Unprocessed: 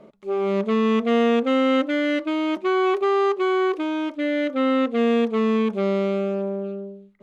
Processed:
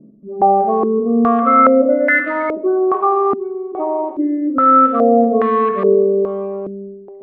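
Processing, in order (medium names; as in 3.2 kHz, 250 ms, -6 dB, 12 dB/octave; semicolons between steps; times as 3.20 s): coarse spectral quantiser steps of 30 dB; spring tank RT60 1.7 s, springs 43/57 ms, chirp 45 ms, DRR 3 dB; step-sequenced low-pass 2.4 Hz 250–1800 Hz; trim +1 dB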